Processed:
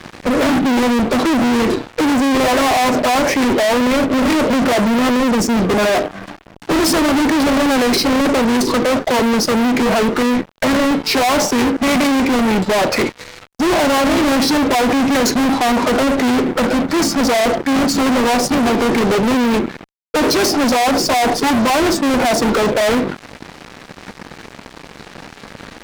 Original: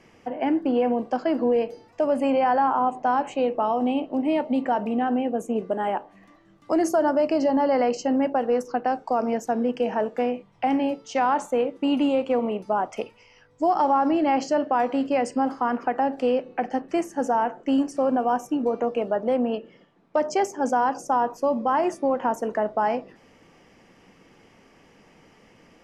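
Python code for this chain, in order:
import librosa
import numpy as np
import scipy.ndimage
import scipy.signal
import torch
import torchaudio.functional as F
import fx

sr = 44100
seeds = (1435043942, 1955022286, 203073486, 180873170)

y = fx.formant_shift(x, sr, semitones=-4)
y = fx.fuzz(y, sr, gain_db=43.0, gate_db=-52.0)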